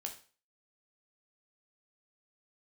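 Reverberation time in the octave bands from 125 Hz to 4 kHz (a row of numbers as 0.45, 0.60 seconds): 0.40, 0.40, 0.40, 0.40, 0.40, 0.40 seconds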